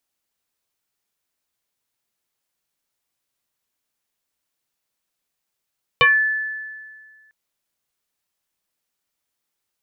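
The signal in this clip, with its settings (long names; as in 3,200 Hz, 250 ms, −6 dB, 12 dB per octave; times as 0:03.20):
two-operator FM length 1.30 s, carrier 1,740 Hz, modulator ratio 0.36, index 2.7, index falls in 0.24 s exponential, decay 1.79 s, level −9 dB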